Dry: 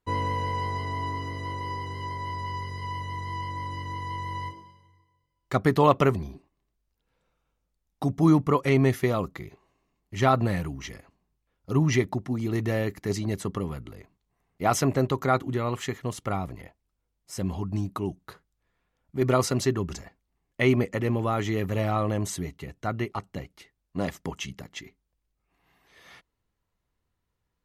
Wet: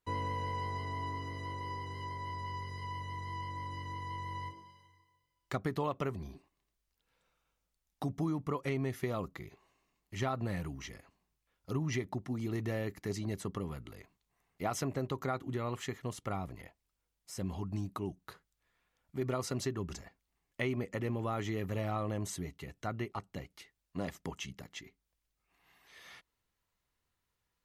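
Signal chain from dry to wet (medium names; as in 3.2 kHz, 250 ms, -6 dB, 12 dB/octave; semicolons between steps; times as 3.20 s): compression 6:1, threshold -23 dBFS, peak gain reduction 10 dB; tape noise reduction on one side only encoder only; trim -7.5 dB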